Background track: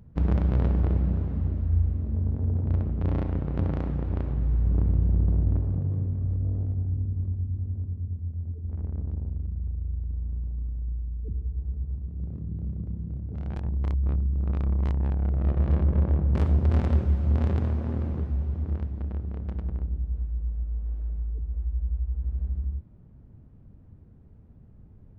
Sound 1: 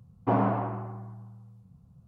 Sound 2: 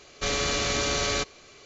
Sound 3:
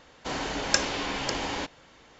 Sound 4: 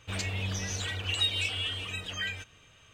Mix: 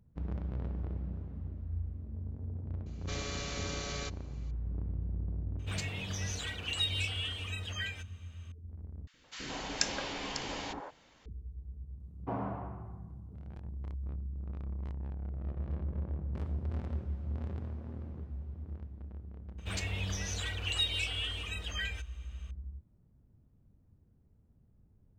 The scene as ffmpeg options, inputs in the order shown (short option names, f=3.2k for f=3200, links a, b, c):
-filter_complex "[4:a]asplit=2[a][b];[0:a]volume=-14dB[c];[3:a]acrossover=split=430|1400[d][e][f];[d]adelay=70[g];[e]adelay=170[h];[g][h][f]amix=inputs=3:normalize=0[i];[1:a]acompressor=mode=upward:threshold=-45dB:ratio=2.5:attack=3.2:release=140:knee=2.83:detection=peak[j];[c]asplit=2[k][l];[k]atrim=end=9.074[m];[i]atrim=end=2.19,asetpts=PTS-STARTPTS,volume=-6.5dB[n];[l]atrim=start=11.256[o];[2:a]atrim=end=1.65,asetpts=PTS-STARTPTS,volume=-13.5dB,afade=t=in:d=0.004:c=hsin,afade=t=out:st=1.646:d=0.004:c=hsin,adelay=2860[p];[a]atrim=end=2.93,asetpts=PTS-STARTPTS,volume=-4.5dB,afade=t=in:d=0.004:c=hsin,afade=t=out:st=2.926:d=0.004:c=hsin,adelay=5590[q];[j]atrim=end=2.07,asetpts=PTS-STARTPTS,volume=-12dB,afade=t=in:d=0.004:c=hsin,afade=t=out:st=2.066:d=0.004:c=hsin,adelay=12000[r];[b]atrim=end=2.93,asetpts=PTS-STARTPTS,volume=-3.5dB,afade=t=in:d=0.004:c=hsin,afade=t=out:st=2.926:d=0.004:c=hsin,adelay=19580[s];[m][n]acrossfade=d=0.004:c1=hsin:c2=hsin[t];[t][o]acrossfade=d=0.004:c1=hsin:c2=hsin[u];[u][p][q][r][s]amix=inputs=5:normalize=0"